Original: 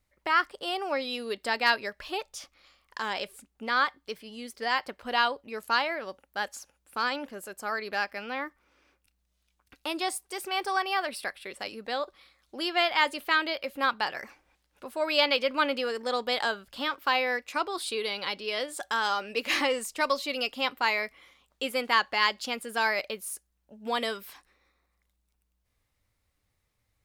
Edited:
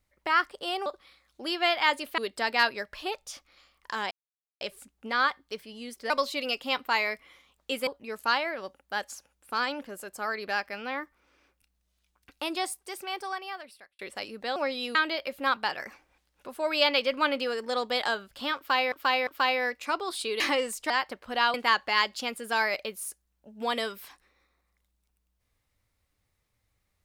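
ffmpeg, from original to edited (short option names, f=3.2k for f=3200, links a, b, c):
-filter_complex "[0:a]asplit=14[a][b][c][d][e][f][g][h][i][j][k][l][m][n];[a]atrim=end=0.862[o];[b]atrim=start=11.998:end=13.322[p];[c]atrim=start=1.248:end=3.18,asetpts=PTS-STARTPTS,afade=t=out:st=1.928:d=0.004:c=hsin,apad=pad_dur=0.5[q];[d]atrim=start=3.18:end=4.672,asetpts=PTS-STARTPTS,afade=t=in:d=0.004:c=hsin[r];[e]atrim=start=20.018:end=21.792[s];[f]atrim=start=5.308:end=11.43,asetpts=PTS-STARTPTS,afade=t=out:st=4.652:d=1.47[t];[g]atrim=start=11.43:end=12.002,asetpts=PTS-STARTPTS,afade=t=in:d=0.004:c=hsin[u];[h]atrim=start=0.858:end=1.252[v];[i]atrim=start=13.318:end=17.292[w];[j]atrim=start=16.938:end=17.292[x];[k]atrim=start=16.938:end=18.072[y];[l]atrim=start=19.518:end=20.022[z];[m]atrim=start=4.668:end=5.312[aa];[n]atrim=start=21.788[ab];[o][p]acrossfade=d=0.004:c1=hsin:c2=hsin[ac];[q][r]concat=n=2:v=0:a=1[ad];[ac][ad]acrossfade=d=0.004:c1=hsin:c2=hsin[ae];[ae][s]acrossfade=d=0.004:c1=hsin:c2=hsin[af];[t][u]concat=n=2:v=0:a=1[ag];[af][ag]acrossfade=d=0.004:c1=hsin:c2=hsin[ah];[ah][v]acrossfade=d=0.004:c1=hsin:c2=hsin[ai];[ai][w]acrossfade=d=0.004:c1=hsin:c2=hsin[aj];[aj][x]acrossfade=d=0.004:c1=hsin:c2=hsin[ak];[ak][y]acrossfade=d=0.004:c1=hsin:c2=hsin[al];[al][z]acrossfade=d=0.004:c1=hsin:c2=hsin[am];[am][aa]acrossfade=d=0.004:c1=hsin:c2=hsin[an];[an][ab]acrossfade=d=0.004:c1=hsin:c2=hsin"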